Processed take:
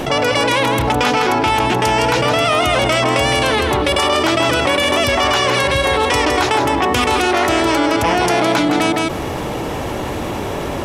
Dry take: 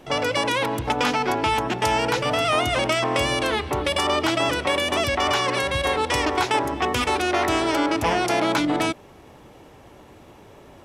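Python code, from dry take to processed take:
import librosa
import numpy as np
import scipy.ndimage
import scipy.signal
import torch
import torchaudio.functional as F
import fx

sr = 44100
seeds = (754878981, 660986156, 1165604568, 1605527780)

y = fx.dmg_crackle(x, sr, seeds[0], per_s=fx.line((0.59, 45.0), (1.23, 10.0)), level_db=-49.0, at=(0.59, 1.23), fade=0.02)
y = y + 10.0 ** (-6.5 / 20.0) * np.pad(y, (int(162 * sr / 1000.0), 0))[:len(y)]
y = fx.env_flatten(y, sr, amount_pct=70)
y = y * 10.0 ** (4.0 / 20.0)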